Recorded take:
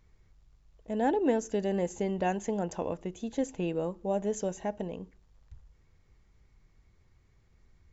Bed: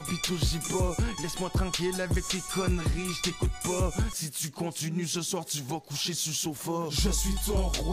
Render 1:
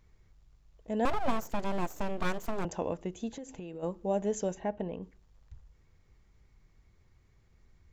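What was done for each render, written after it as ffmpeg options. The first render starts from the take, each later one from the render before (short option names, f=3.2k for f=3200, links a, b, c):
-filter_complex "[0:a]asettb=1/sr,asplit=3[a][b][c];[a]atrim=end=1.054[d];[b]atrim=start=1.05:end=2.65,asetpts=PTS-STARTPTS,afade=t=in:d=0.004:c=qsin,afade=t=out:st=1.596:d=0.004:c=qsin,aeval=exprs='abs(val(0))':c=same[e];[c]atrim=start=2.646[f];[d][e]acrossfade=d=0.004:c1=hsin:c2=qsin[g];[g][f]acrossfade=d=0.004:c1=qsin:c2=hsin,asplit=3[h][i][j];[h]afade=t=out:st=3.31:d=0.02[k];[i]acompressor=threshold=-38dB:ratio=16:attack=3.2:release=140:knee=1:detection=peak,afade=t=in:st=3.31:d=0.02,afade=t=out:st=3.82:d=0.02[l];[j]afade=t=in:st=3.82:d=0.02[m];[k][l][m]amix=inputs=3:normalize=0,asplit=3[n][o][p];[n]afade=t=out:st=4.54:d=0.02[q];[o]lowpass=3k,afade=t=in:st=4.54:d=0.02,afade=t=out:st=5.01:d=0.02[r];[p]afade=t=in:st=5.01:d=0.02[s];[q][r][s]amix=inputs=3:normalize=0"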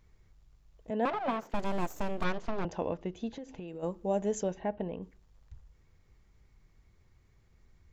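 -filter_complex "[0:a]asettb=1/sr,asplit=3[a][b][c];[a]atrim=end=0.904[d];[b]atrim=start=0.9:end=1.54,asetpts=PTS-STARTPTS,afade=t=in:d=0.004:c=qsin,afade=t=out:st=0.636:d=0.004:c=qsin,acrossover=split=160 4100:gain=0.0708 1 0.112[e][f][g];[e][f][g]amix=inputs=3:normalize=0[h];[c]atrim=start=1.536[i];[d][h]acrossfade=d=0.004:c1=hsin:c2=qsin[j];[j][i]acrossfade=d=0.004:c1=qsin:c2=hsin,asettb=1/sr,asplit=3[k][l][m];[k]atrim=end=2.244[n];[l]atrim=start=2.24:end=3.68,asetpts=PTS-STARTPTS,afade=t=in:d=0.004:c=qsin,afade=t=out:st=1.436:d=0.004:c=qsin,lowpass=f=5.2k:w=0.5412,lowpass=f=5.2k:w=1.3066[o];[m]atrim=start=3.676[p];[n][o]acrossfade=d=0.004:c1=hsin:c2=qsin[q];[q][p]acrossfade=d=0.004:c1=qsin:c2=hsin,asettb=1/sr,asplit=3[r][s][t];[r]atrim=end=4.434[u];[s]atrim=start=4.43:end=5.02,asetpts=PTS-STARTPTS,afade=t=in:d=0.004:c=qsin,afade=t=out:st=0.586:d=0.004:c=qsin,lowpass=f=4.9k:w=0.5412,lowpass=f=4.9k:w=1.3066[v];[t]atrim=start=5.016[w];[u][v]acrossfade=d=0.004:c1=hsin:c2=qsin[x];[x][w]acrossfade=d=0.004:c1=qsin:c2=hsin"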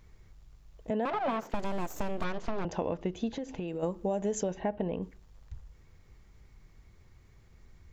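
-filter_complex "[0:a]asplit=2[a][b];[b]alimiter=level_in=1dB:limit=-24dB:level=0:latency=1:release=33,volume=-1dB,volume=0.5dB[c];[a][c]amix=inputs=2:normalize=0,acompressor=threshold=-27dB:ratio=6"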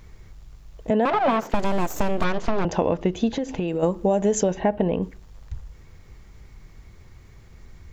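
-af "volume=10.5dB"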